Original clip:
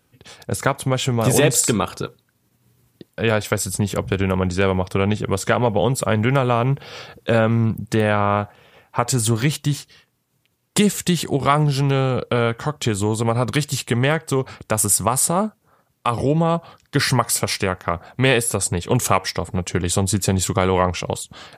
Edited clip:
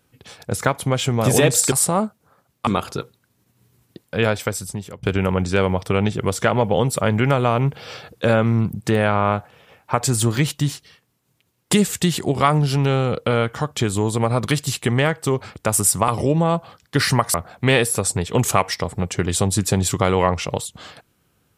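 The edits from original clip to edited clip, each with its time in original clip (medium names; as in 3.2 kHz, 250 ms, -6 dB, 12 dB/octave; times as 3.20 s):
3.29–4.08 s: fade out, to -21.5 dB
15.13–16.08 s: move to 1.72 s
17.34–17.90 s: delete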